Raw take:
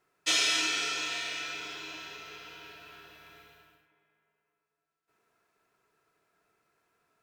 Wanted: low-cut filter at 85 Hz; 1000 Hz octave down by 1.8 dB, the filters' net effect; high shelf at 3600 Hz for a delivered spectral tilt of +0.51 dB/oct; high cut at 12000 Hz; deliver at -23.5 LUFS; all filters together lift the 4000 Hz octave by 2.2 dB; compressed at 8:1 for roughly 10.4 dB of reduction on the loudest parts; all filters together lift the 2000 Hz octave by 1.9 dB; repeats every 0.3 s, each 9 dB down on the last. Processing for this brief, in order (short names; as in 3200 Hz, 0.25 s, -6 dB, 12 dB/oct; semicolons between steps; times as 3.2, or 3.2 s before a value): HPF 85 Hz; LPF 12000 Hz; bell 1000 Hz -4.5 dB; bell 2000 Hz +3.5 dB; high shelf 3600 Hz -6.5 dB; bell 4000 Hz +6 dB; compressor 8:1, threshold -32 dBFS; feedback echo 0.3 s, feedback 35%, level -9 dB; gain +11.5 dB